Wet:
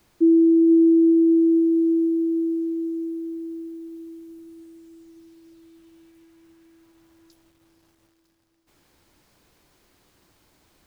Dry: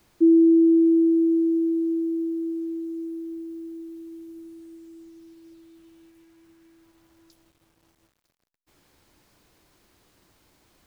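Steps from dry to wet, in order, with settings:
feedback delay with all-pass diffusion 473 ms, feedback 64%, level −11 dB

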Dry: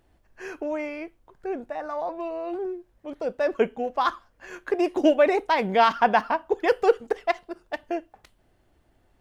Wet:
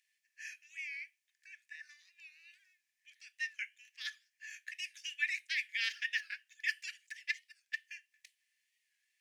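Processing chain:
Chebyshev high-pass with heavy ripple 1,700 Hz, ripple 6 dB
wow of a warped record 45 rpm, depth 100 cents

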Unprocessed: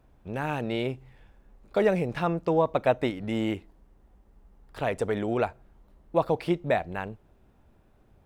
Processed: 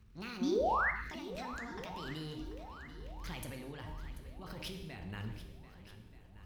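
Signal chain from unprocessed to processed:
gliding playback speed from 165% → 91%
noise gate −56 dBFS, range −7 dB
guitar amp tone stack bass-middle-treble 6-0-2
hum removal 307.7 Hz, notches 3
compressor whose output falls as the input rises −58 dBFS, ratio −1
transient designer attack −10 dB, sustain +7 dB
sound drawn into the spectrogram rise, 0:00.41–0:00.91, 220–2,200 Hz −45 dBFS
on a send: feedback echo with a long and a short gap by turns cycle 1,228 ms, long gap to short 1.5 to 1, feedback 45%, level −14 dB
on the sum: reverb whose tail is shaped and stops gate 300 ms falling, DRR 5 dB
level +13 dB

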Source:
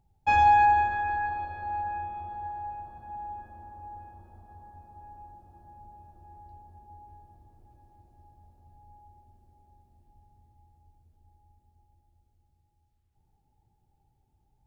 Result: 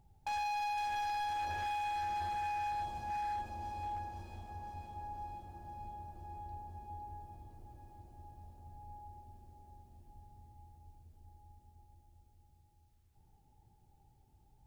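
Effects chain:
dynamic equaliser 690 Hz, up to +5 dB, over −34 dBFS, Q 1
downward compressor 5 to 1, threshold −34 dBFS, peak gain reduction 19 dB
hard clipping −38.5 dBFS, distortion −8 dB
on a send: delay with a high-pass on its return 509 ms, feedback 67%, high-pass 3,600 Hz, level −4 dB
on the sum: level +3.5 dB

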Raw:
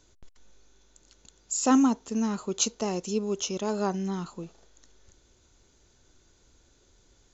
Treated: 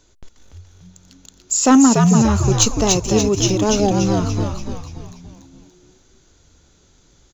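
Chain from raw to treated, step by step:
time-frequency box erased 0:03.80–0:04.03, 830–2,700 Hz
leveller curve on the samples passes 1
echo with shifted repeats 289 ms, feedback 48%, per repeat −92 Hz, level −3 dB
level +7.5 dB

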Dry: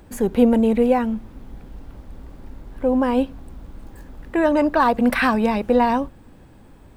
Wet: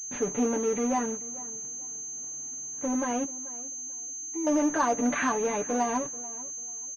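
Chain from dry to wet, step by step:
high-pass filter 150 Hz 24 dB per octave
downward expander −46 dBFS
comb filter 6.9 ms, depth 78%
in parallel at −9.5 dB: fuzz pedal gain 34 dB, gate −36 dBFS
0:03.24–0:04.47: on the sum: formant filter u
flanger 0.79 Hz, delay 8.3 ms, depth 1.4 ms, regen −34%
on a send: tape delay 438 ms, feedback 27%, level −17.5 dB, low-pass 2,000 Hz
on the sum: switching amplifier with a slow clock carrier 6,300 Hz
level −9 dB

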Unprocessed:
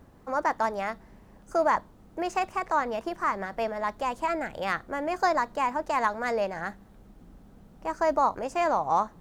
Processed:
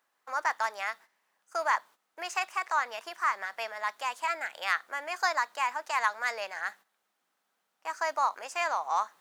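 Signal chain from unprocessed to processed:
noise gate −45 dBFS, range −12 dB
high-pass filter 1,400 Hz 12 dB per octave
level +4 dB

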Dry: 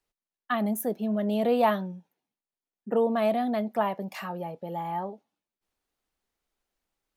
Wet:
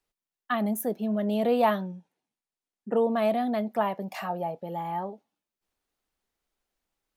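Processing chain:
0:01.85–0:03.11: Butterworth low-pass 11,000 Hz
0:04.11–0:04.60: parametric band 720 Hz +10 dB 0.46 octaves

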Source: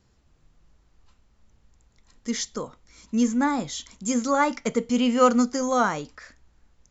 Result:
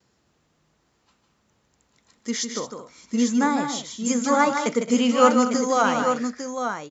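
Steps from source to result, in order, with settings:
noise gate with hold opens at −55 dBFS
Bessel high-pass filter 190 Hz, order 2
multi-tap delay 154/220/852 ms −7/−14/−7 dB
level +2 dB

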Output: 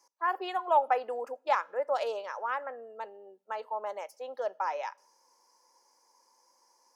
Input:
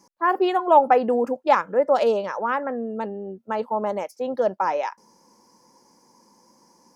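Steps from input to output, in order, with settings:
Bessel high-pass filter 680 Hz, order 4
on a send: convolution reverb RT60 0.65 s, pre-delay 3 ms, DRR 22.5 dB
on the sum: level −7 dB

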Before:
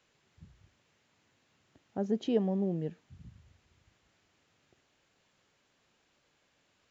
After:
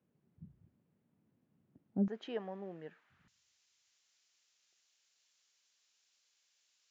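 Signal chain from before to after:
resonant band-pass 190 Hz, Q 1.8, from 0:02.08 1,500 Hz, from 0:03.28 5,800 Hz
level +4.5 dB

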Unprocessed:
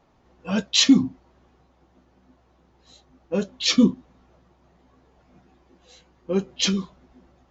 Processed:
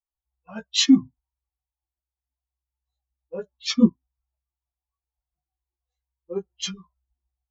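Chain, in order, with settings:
spectral dynamics exaggerated over time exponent 2
chorus effect 0.3 Hz, delay 17 ms, depth 4.2 ms
expander for the loud parts 1.5 to 1, over −35 dBFS
level +6 dB

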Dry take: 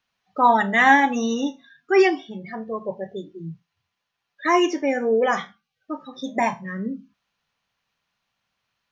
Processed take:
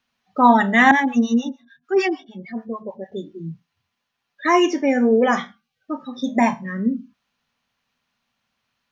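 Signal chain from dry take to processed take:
parametric band 240 Hz +11.5 dB 0.23 octaves
0:00.91–0:03.12: two-band tremolo in antiphase 6.7 Hz, depth 100%, crossover 690 Hz
level +2 dB

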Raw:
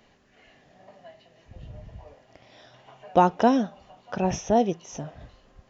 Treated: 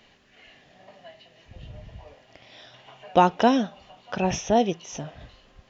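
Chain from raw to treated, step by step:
parametric band 3,100 Hz +8 dB 1.6 octaves

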